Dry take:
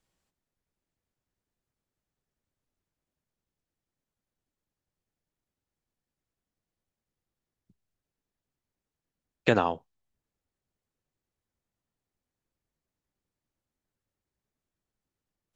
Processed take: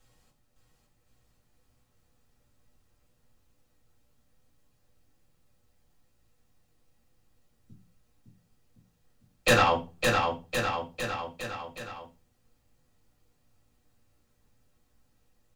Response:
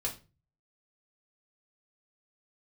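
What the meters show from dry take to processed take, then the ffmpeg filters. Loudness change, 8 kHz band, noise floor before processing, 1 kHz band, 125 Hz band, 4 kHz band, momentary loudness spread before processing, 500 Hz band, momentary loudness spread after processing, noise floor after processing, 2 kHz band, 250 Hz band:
-0.5 dB, n/a, under -85 dBFS, +7.0 dB, +4.5 dB, +11.0 dB, 10 LU, +3.0 dB, 18 LU, -70 dBFS, +8.0 dB, 0.0 dB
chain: -filter_complex "[0:a]acrossover=split=1100[a][b];[a]acompressor=threshold=-34dB:ratio=6[c];[c][b]amix=inputs=2:normalize=0,aeval=exprs='0.335*sin(PI/2*4.47*val(0)/0.335)':c=same,aecho=1:1:560|1064|1518|1926|2293:0.631|0.398|0.251|0.158|0.1[d];[1:a]atrim=start_sample=2205,asetrate=48510,aresample=44100[e];[d][e]afir=irnorm=-1:irlink=0,volume=-5.5dB"

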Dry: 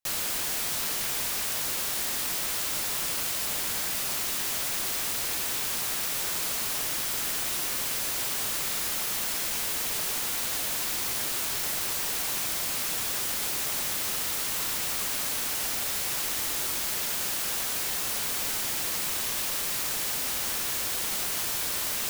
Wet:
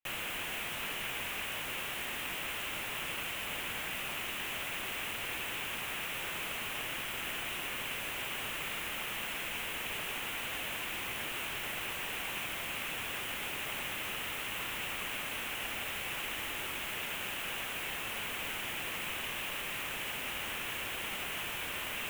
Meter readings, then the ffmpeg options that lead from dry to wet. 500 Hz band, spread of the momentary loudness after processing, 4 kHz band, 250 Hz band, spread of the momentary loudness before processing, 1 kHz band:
-4.5 dB, 0 LU, -6.0 dB, -4.5 dB, 0 LU, -3.5 dB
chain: -af "highshelf=f=3.6k:t=q:w=3:g=-9,volume=-4.5dB"

